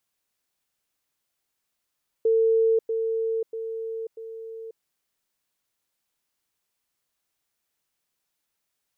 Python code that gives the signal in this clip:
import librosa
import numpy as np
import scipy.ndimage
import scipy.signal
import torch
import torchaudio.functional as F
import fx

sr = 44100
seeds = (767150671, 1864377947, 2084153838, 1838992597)

y = fx.level_ladder(sr, hz=450.0, from_db=-17.0, step_db=-6.0, steps=4, dwell_s=0.54, gap_s=0.1)